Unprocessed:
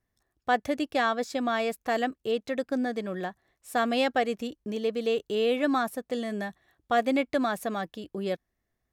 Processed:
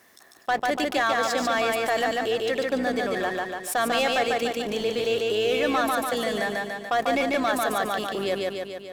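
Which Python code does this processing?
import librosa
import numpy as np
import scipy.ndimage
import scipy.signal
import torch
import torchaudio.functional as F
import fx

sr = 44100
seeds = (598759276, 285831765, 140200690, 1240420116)

y = fx.octave_divider(x, sr, octaves=2, level_db=1.0)
y = scipy.signal.sosfilt(scipy.signal.butter(2, 260.0, 'highpass', fs=sr, output='sos'), y)
y = fx.low_shelf(y, sr, hz=500.0, db=-9.0)
y = fx.leveller(y, sr, passes=2)
y = fx.echo_feedback(y, sr, ms=145, feedback_pct=40, wet_db=-3.5)
y = fx.env_flatten(y, sr, amount_pct=50)
y = F.gain(torch.from_numpy(y), -3.0).numpy()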